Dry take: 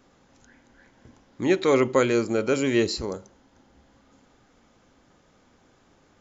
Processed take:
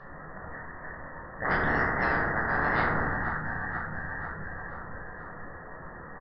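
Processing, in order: Chebyshev high-pass 2100 Hz, order 10; dynamic EQ 3100 Hz, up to -5 dB, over -50 dBFS, Q 2.2; inverted band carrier 4000 Hz; soft clip -23.5 dBFS, distortion -27 dB; air absorption 270 m; feedback echo 0.485 s, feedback 60%, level -19 dB; reverb RT60 0.60 s, pre-delay 9 ms, DRR -4 dB; spectral compressor 4:1; gain +1.5 dB

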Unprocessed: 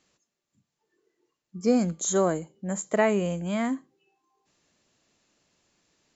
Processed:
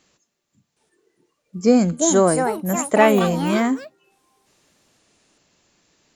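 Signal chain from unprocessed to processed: echoes that change speed 0.766 s, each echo +5 st, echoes 3, each echo -6 dB; gain +7.5 dB

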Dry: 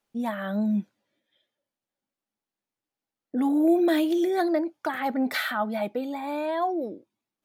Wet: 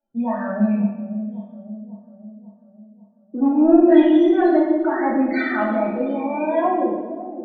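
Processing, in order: rattling part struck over -30 dBFS, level -32 dBFS; 0.74–3.87 LPF 1600 Hz 6 dB/oct; loudest bins only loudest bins 16; added harmonics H 3 -26 dB, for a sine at -13.5 dBFS; split-band echo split 720 Hz, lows 0.545 s, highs 0.115 s, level -11.5 dB; reverb RT60 0.95 s, pre-delay 3 ms, DRR -6.5 dB

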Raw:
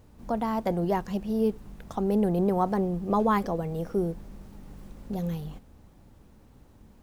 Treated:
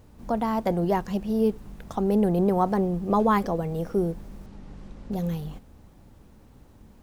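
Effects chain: 4.46–5.12 LPF 5900 Hz 12 dB/oct; gain +2.5 dB

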